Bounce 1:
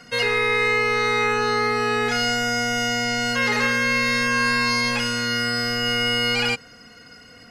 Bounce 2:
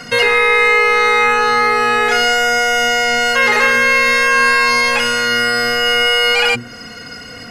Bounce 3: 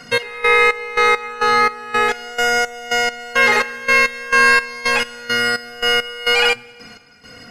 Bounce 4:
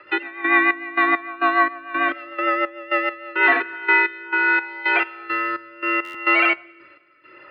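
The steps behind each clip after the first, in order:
notches 60/120/180/240/300/360/420 Hz; dynamic EQ 5000 Hz, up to -6 dB, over -41 dBFS, Q 1.3; in parallel at 0 dB: compressor, threshold -33 dBFS, peak gain reduction 13.5 dB; on the sum: gain +8 dB
step gate "xx...xxx..." 170 bpm -12 dB; plate-style reverb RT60 2 s, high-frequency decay 0.85×, DRR 16 dB; upward expander 1.5:1, over -25 dBFS
rotary speaker horn 6.7 Hz, later 0.75 Hz, at 3.03; mistuned SSB -140 Hz 510–3100 Hz; stuck buffer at 6.04, samples 512, times 8

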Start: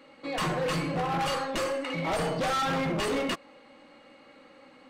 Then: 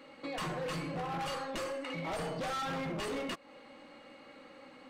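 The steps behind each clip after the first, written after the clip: compressor 2.5:1, threshold -40 dBFS, peak gain reduction 8.5 dB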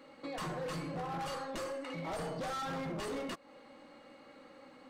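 bell 2600 Hz -4.5 dB 0.92 oct; gain -1.5 dB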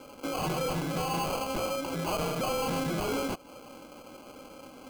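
sample-and-hold 24×; gain +8 dB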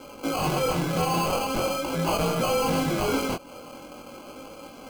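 chorus 0.42 Hz, delay 17.5 ms, depth 6.7 ms; gain +8.5 dB

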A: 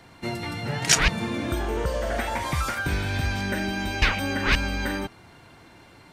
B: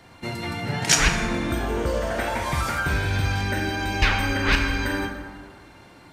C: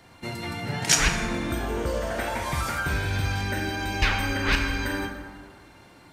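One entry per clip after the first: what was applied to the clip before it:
plate-style reverb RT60 1.8 s, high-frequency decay 0.5×, DRR 2.5 dB
high shelf 7000 Hz +4 dB; gain -3 dB

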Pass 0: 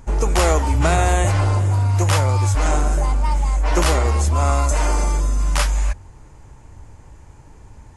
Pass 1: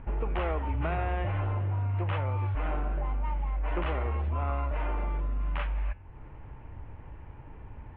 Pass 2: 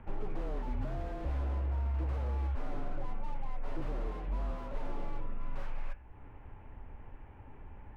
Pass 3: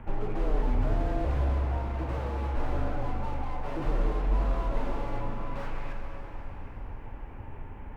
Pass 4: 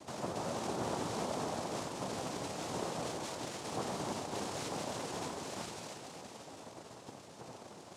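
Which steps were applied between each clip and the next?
compressor 2:1, threshold -34 dBFS, peak gain reduction 12 dB; steep low-pass 3000 Hz 48 dB/oct; de-hum 189 Hz, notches 36; gain -2 dB
frequency shift -30 Hz; flange 0.29 Hz, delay 7.7 ms, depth 9.7 ms, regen -78%; slew limiter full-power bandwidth 4.4 Hz; gain +1 dB
plate-style reverb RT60 4.5 s, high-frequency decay 0.9×, DRR 1.5 dB; gain +6.5 dB
noise vocoder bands 2; gain -4 dB

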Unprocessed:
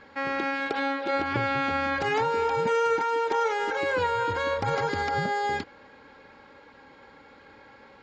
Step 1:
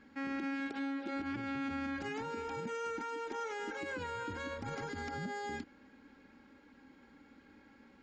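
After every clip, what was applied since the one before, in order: graphic EQ 125/250/500/1000/2000/4000 Hz -9/+9/-11/-9/-4/-8 dB; limiter -27.5 dBFS, peak gain reduction 10 dB; gain -4 dB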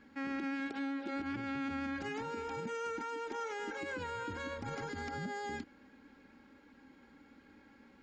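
vibrato 7.8 Hz 13 cents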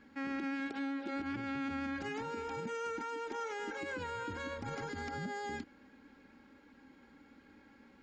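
nothing audible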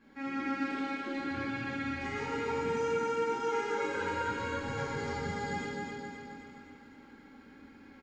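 feedback echo 0.263 s, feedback 53%, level -5 dB; plate-style reverb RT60 2 s, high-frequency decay 0.75×, DRR -9.5 dB; gain -6 dB

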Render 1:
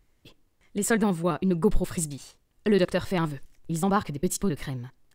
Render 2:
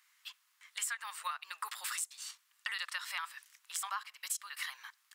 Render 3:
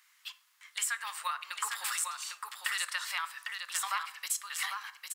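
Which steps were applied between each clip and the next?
steep high-pass 1100 Hz 36 dB/oct; compressor 8:1, threshold -43 dBFS, peak gain reduction 18.5 dB; gain +7.5 dB
echo 0.802 s -5.5 dB; plate-style reverb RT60 0.73 s, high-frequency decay 0.55×, DRR 12.5 dB; gain +4 dB

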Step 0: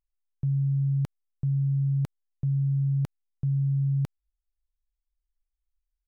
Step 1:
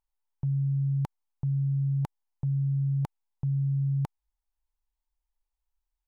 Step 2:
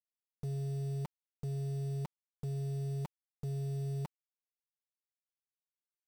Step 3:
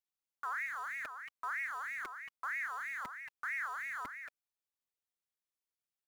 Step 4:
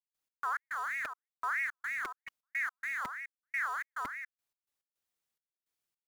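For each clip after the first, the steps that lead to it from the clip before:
bell 890 Hz +14.5 dB 0.57 oct; gain -2 dB
comb 5.5 ms, depth 64%; soft clip -29 dBFS, distortion -14 dB; bit-crush 8-bit; gain -5 dB
echo 0.228 s -9 dB; ring modulator with a swept carrier 1600 Hz, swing 30%, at 3.1 Hz; gain +1.5 dB
step gate ".x.x.xxx..xx.xx" 106 bpm -60 dB; gain +5 dB

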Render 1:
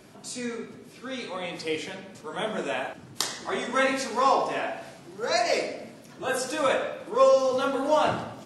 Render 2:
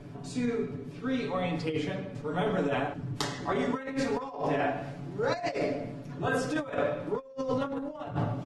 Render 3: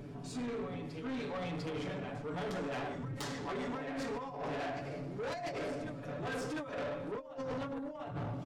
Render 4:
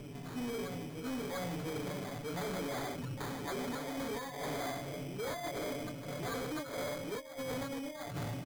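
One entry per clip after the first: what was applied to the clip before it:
RIAA curve playback; comb 7 ms, depth 74%; negative-ratio compressor -25 dBFS, ratio -0.5; gain -4.5 dB
reverse echo 0.697 s -10 dB; soft clip -32 dBFS, distortion -8 dB; gain -3 dB
sample-and-hold 16×

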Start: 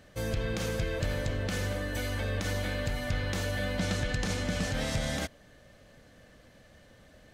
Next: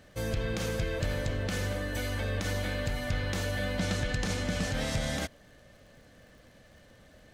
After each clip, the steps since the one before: crackle 57/s -52 dBFS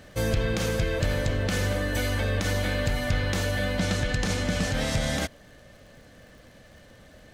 vocal rider; gain +5.5 dB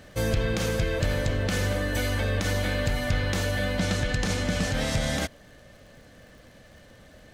nothing audible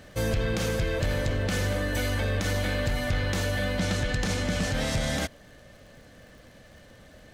soft clip -17 dBFS, distortion -21 dB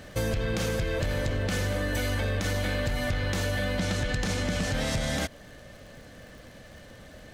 compressor 4:1, threshold -29 dBFS, peak gain reduction 6.5 dB; gain +3.5 dB

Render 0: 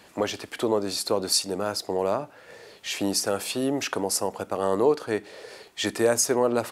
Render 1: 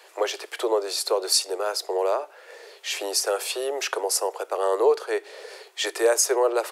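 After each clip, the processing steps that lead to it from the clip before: steep high-pass 360 Hz 72 dB/oct; gain +2 dB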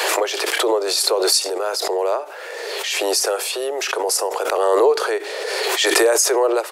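backwards sustainer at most 21 dB/s; gain +3 dB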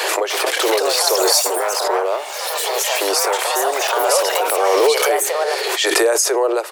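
echoes that change speed 0.301 s, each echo +4 st, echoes 3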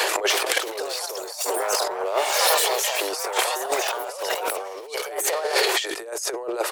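negative-ratio compressor -23 dBFS, ratio -0.5; gain -1 dB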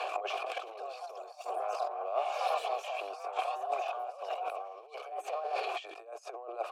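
vowel filter a; gain -2 dB

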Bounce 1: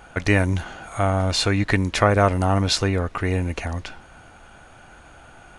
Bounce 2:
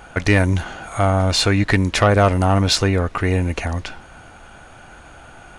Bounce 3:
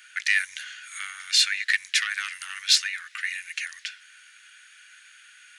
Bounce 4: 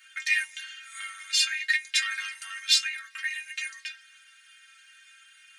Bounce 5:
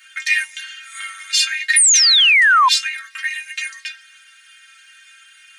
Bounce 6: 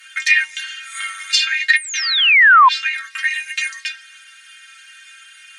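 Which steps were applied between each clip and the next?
soft clip -9 dBFS, distortion -19 dB; gain +4.5 dB
elliptic high-pass 1700 Hz, stop band 60 dB
companded quantiser 8-bit; metallic resonator 67 Hz, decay 0.64 s, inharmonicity 0.03; gain +8.5 dB
painted sound fall, 1.76–2.69, 970–10000 Hz -15 dBFS; compressor, threshold -18 dBFS, peak gain reduction 6 dB; gain +8 dB
treble ducked by the level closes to 2300 Hz, closed at -10.5 dBFS; gain +4 dB

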